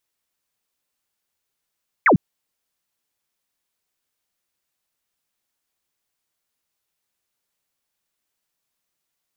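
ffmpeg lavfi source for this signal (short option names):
-f lavfi -i "aevalsrc='0.316*clip(t/0.002,0,1)*clip((0.1-t)/0.002,0,1)*sin(2*PI*2400*0.1/log(130/2400)*(exp(log(130/2400)*t/0.1)-1))':d=0.1:s=44100"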